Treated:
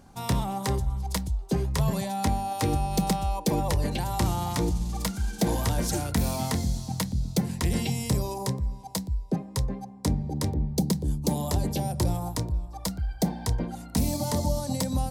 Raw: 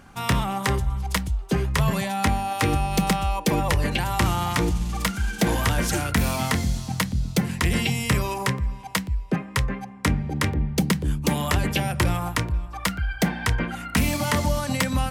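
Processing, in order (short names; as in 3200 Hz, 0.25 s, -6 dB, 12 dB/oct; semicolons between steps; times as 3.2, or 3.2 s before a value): band shelf 1900 Hz -9 dB, from 8.08 s -16 dB; gain -3 dB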